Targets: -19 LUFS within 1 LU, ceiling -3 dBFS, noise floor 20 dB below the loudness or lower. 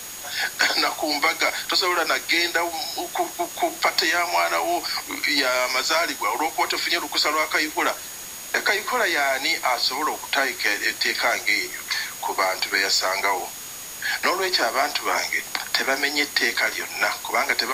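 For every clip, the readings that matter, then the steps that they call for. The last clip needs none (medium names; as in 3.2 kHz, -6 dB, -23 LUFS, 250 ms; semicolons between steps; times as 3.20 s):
steady tone 6.7 kHz; tone level -39 dBFS; noise floor -36 dBFS; noise floor target -42 dBFS; loudness -22.0 LUFS; peak level -7.0 dBFS; loudness target -19.0 LUFS
-> band-stop 6.7 kHz, Q 30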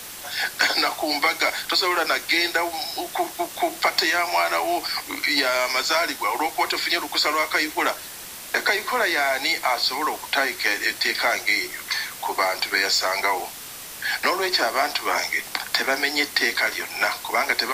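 steady tone not found; noise floor -38 dBFS; noise floor target -42 dBFS
-> noise print and reduce 6 dB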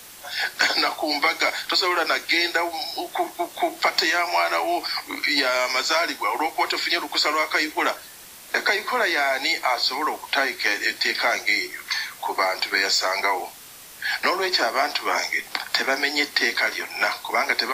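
noise floor -43 dBFS; loudness -22.0 LUFS; peak level -6.5 dBFS; loudness target -19.0 LUFS
-> trim +3 dB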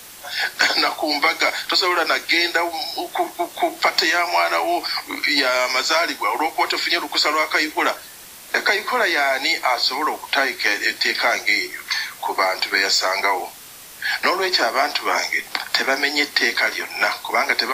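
loudness -19.0 LUFS; peak level -3.5 dBFS; noise floor -40 dBFS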